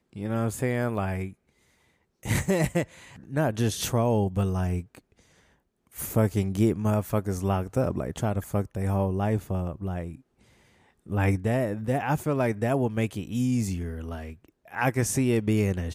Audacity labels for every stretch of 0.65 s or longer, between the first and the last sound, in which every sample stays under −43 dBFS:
1.330000	2.230000	silence
4.990000	5.940000	silence
10.150000	11.070000	silence